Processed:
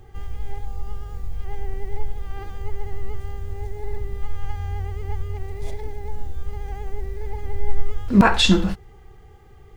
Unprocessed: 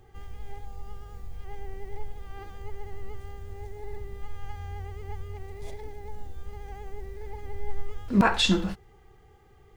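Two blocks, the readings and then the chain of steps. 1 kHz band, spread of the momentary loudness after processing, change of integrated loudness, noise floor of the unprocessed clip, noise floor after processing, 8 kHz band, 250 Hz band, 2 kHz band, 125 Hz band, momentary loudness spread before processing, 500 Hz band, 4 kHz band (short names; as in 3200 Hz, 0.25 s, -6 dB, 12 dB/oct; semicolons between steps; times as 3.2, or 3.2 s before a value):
+5.5 dB, 18 LU, +5.5 dB, -55 dBFS, -46 dBFS, +5.5 dB, +7.0 dB, +5.5 dB, +8.5 dB, 21 LU, +6.0 dB, +5.5 dB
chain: low shelf 120 Hz +6 dB; gain +5.5 dB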